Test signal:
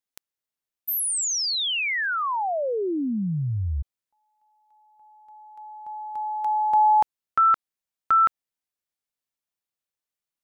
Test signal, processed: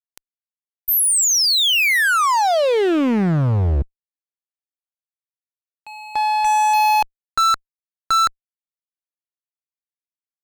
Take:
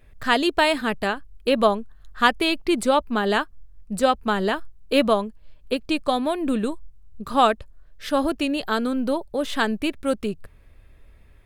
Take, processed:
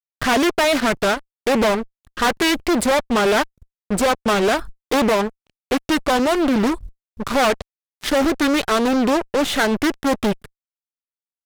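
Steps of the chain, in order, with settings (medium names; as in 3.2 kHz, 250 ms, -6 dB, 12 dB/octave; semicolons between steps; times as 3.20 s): fuzz box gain 30 dB, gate -34 dBFS; loudspeaker Doppler distortion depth 0.5 ms; trim -1 dB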